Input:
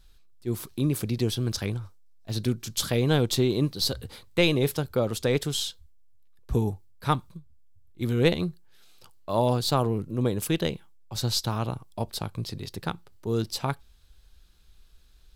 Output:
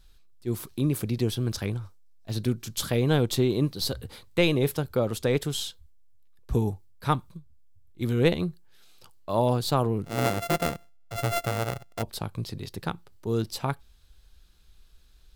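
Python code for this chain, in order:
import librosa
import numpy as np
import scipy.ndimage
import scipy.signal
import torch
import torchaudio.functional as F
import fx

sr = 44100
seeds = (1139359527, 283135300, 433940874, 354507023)

y = fx.sample_sort(x, sr, block=64, at=(10.04, 12.01), fade=0.02)
y = fx.dynamic_eq(y, sr, hz=5100.0, q=0.82, threshold_db=-44.0, ratio=4.0, max_db=-4)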